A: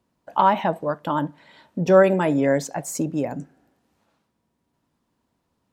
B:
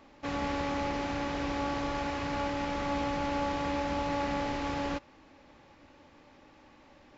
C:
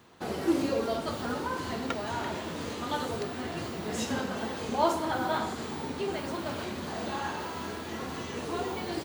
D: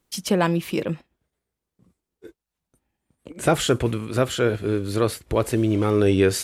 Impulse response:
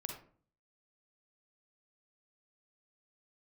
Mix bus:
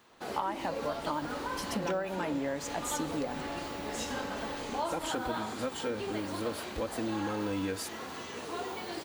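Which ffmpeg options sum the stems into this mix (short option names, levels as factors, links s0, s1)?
-filter_complex "[0:a]lowshelf=f=460:g=-6,flanger=delay=3:depth=1:regen=66:speed=0.74:shape=sinusoidal,volume=1[s0];[1:a]adelay=100,volume=0.316[s1];[2:a]lowshelf=f=260:g=-11.5,volume=0.794[s2];[3:a]aecho=1:1:3.8:0.82,adelay=1450,volume=0.224[s3];[s0][s1][s2][s3]amix=inputs=4:normalize=0,acompressor=threshold=0.0355:ratio=12"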